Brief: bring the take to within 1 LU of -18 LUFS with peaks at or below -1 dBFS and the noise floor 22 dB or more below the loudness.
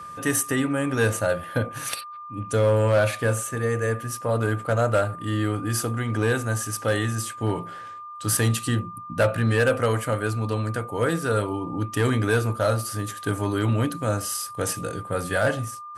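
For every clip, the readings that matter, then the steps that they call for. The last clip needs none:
clipped samples 0.4%; clipping level -13.5 dBFS; steady tone 1.2 kHz; tone level -36 dBFS; loudness -24.5 LUFS; peak level -13.5 dBFS; loudness target -18.0 LUFS
-> clip repair -13.5 dBFS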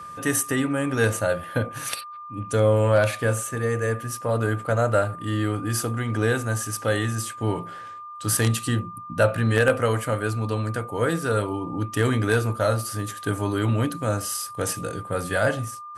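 clipped samples 0.0%; steady tone 1.2 kHz; tone level -36 dBFS
-> band-stop 1.2 kHz, Q 30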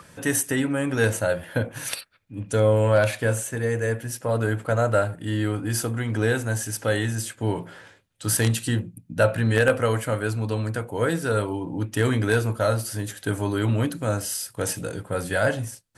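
steady tone not found; loudness -24.5 LUFS; peak level -4.5 dBFS; loudness target -18.0 LUFS
-> trim +6.5 dB; peak limiter -1 dBFS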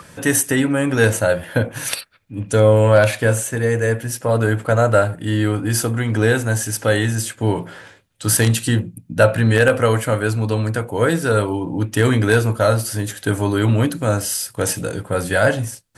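loudness -18.0 LUFS; peak level -1.0 dBFS; noise floor -49 dBFS

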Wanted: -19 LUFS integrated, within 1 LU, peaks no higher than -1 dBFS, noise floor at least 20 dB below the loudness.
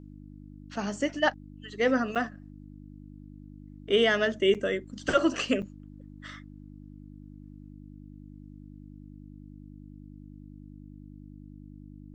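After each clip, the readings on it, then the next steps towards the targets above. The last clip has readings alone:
dropouts 3; longest dropout 7.1 ms; hum 50 Hz; highest harmonic 300 Hz; hum level -44 dBFS; loudness -27.5 LUFS; peak level -10.0 dBFS; loudness target -19.0 LUFS
-> interpolate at 2.15/4.54/5.62 s, 7.1 ms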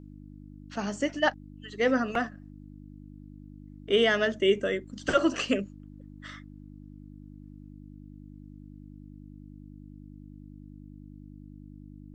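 dropouts 0; hum 50 Hz; highest harmonic 300 Hz; hum level -44 dBFS
-> de-hum 50 Hz, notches 6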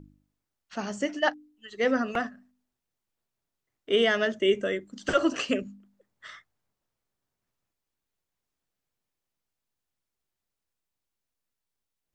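hum not found; loudness -27.5 LUFS; peak level -10.0 dBFS; loudness target -19.0 LUFS
-> trim +8.5 dB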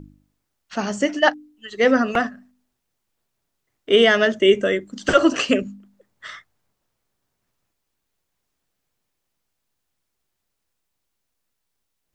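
loudness -19.0 LUFS; peak level -1.5 dBFS; noise floor -77 dBFS

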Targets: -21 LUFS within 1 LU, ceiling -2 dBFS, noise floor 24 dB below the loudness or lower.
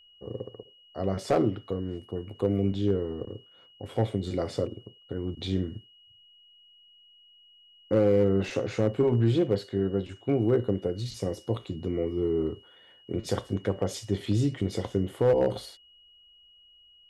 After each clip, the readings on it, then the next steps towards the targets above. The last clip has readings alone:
clipped samples 0.3%; clipping level -15.5 dBFS; steady tone 2.9 kHz; tone level -55 dBFS; loudness -28.5 LUFS; peak level -15.5 dBFS; loudness target -21.0 LUFS
-> clip repair -15.5 dBFS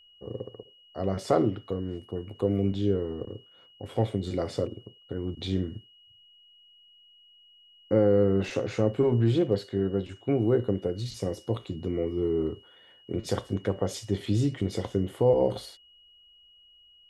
clipped samples 0.0%; steady tone 2.9 kHz; tone level -55 dBFS
-> band-stop 2.9 kHz, Q 30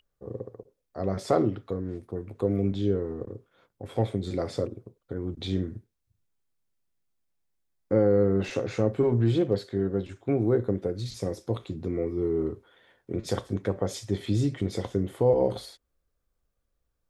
steady tone not found; loudness -28.5 LUFS; peak level -10.0 dBFS; loudness target -21.0 LUFS
-> trim +7.5 dB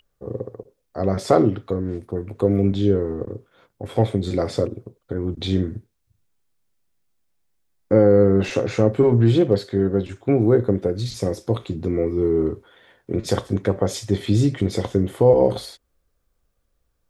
loudness -21.0 LUFS; peak level -2.5 dBFS; noise floor -72 dBFS

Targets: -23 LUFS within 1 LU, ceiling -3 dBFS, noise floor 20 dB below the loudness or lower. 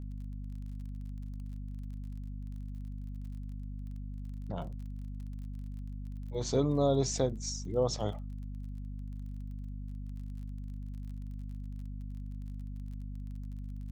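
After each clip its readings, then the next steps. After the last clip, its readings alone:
tick rate 31 per s; hum 50 Hz; highest harmonic 250 Hz; hum level -38 dBFS; loudness -38.0 LUFS; peak level -16.0 dBFS; loudness target -23.0 LUFS
-> de-click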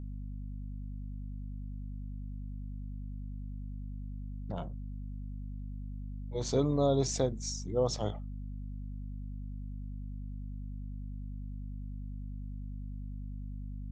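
tick rate 0 per s; hum 50 Hz; highest harmonic 250 Hz; hum level -38 dBFS
-> hum notches 50/100/150/200/250 Hz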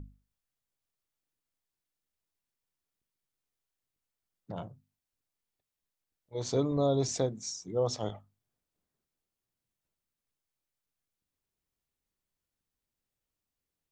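hum not found; loudness -32.0 LUFS; peak level -17.0 dBFS; loudness target -23.0 LUFS
-> trim +9 dB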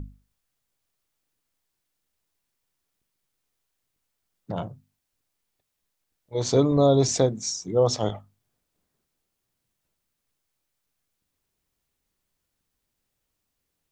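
loudness -23.5 LUFS; peak level -8.0 dBFS; noise floor -80 dBFS

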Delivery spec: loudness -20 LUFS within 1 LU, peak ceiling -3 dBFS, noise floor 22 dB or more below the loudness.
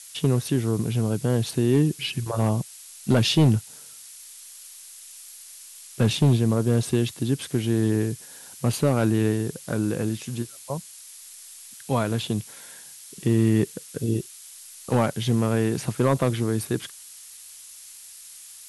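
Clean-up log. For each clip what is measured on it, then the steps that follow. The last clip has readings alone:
clipped samples 0.3%; clipping level -11.5 dBFS; noise floor -45 dBFS; noise floor target -46 dBFS; loudness -24.0 LUFS; peak level -11.5 dBFS; loudness target -20.0 LUFS
-> clip repair -11.5 dBFS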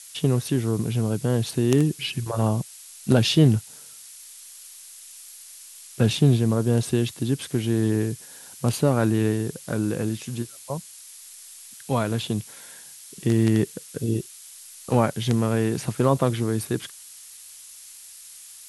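clipped samples 0.0%; noise floor -45 dBFS; noise floor target -46 dBFS
-> noise reduction 6 dB, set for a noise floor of -45 dBFS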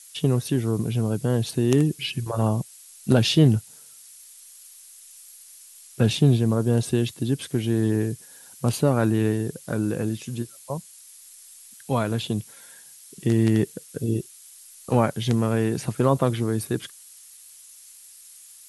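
noise floor -48 dBFS; loudness -24.0 LUFS; peak level -2.5 dBFS; loudness target -20.0 LUFS
-> trim +4 dB; peak limiter -3 dBFS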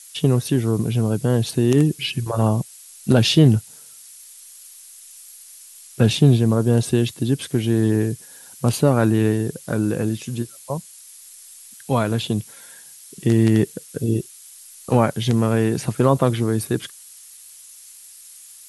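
loudness -20.0 LUFS; peak level -3.0 dBFS; noise floor -44 dBFS

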